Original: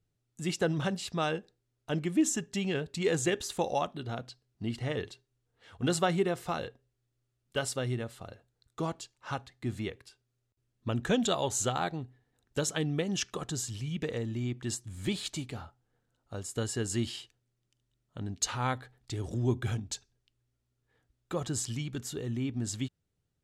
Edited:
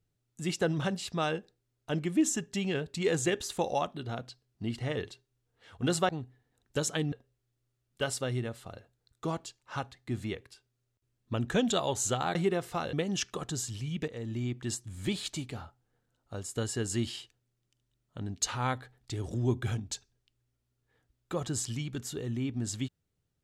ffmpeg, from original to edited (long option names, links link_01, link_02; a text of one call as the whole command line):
ffmpeg -i in.wav -filter_complex "[0:a]asplit=6[link_01][link_02][link_03][link_04][link_05][link_06];[link_01]atrim=end=6.092[link_07];[link_02]atrim=start=11.898:end=12.932[link_08];[link_03]atrim=start=6.668:end=11.902[link_09];[link_04]atrim=start=6.088:end=6.672[link_10];[link_05]atrim=start=12.928:end=14.08,asetpts=PTS-STARTPTS,afade=type=out:start_time=1.148:duration=0.004:curve=hsin:silence=0.199526[link_11];[link_06]atrim=start=14.08,asetpts=PTS-STARTPTS,afade=type=in:duration=0.25:silence=0.199526[link_12];[link_07][link_08]acrossfade=duration=0.004:curve1=hsin:curve2=hsin[link_13];[link_13][link_09]acrossfade=duration=0.004:curve1=hsin:curve2=hsin[link_14];[link_14][link_10]acrossfade=duration=0.004:curve1=hsin:curve2=hsin[link_15];[link_11][link_12]concat=n=2:v=0:a=1[link_16];[link_15][link_16]acrossfade=duration=0.004:curve1=hsin:curve2=hsin" out.wav